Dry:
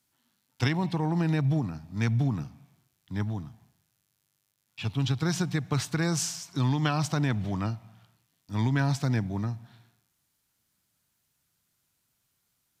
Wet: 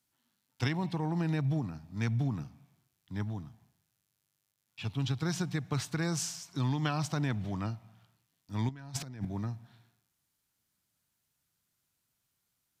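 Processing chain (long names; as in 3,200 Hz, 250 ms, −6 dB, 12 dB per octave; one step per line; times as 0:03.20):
0:08.69–0:09.25: compressor whose output falls as the input rises −33 dBFS, ratio −0.5
level −5 dB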